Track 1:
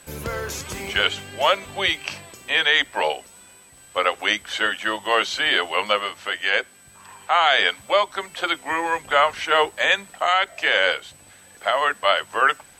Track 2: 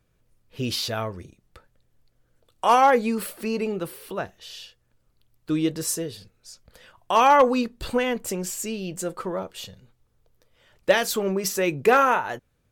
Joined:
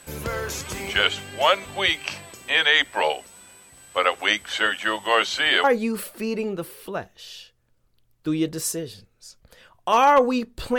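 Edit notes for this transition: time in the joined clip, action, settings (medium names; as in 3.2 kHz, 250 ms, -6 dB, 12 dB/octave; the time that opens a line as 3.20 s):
track 1
5.64 s: go over to track 2 from 2.87 s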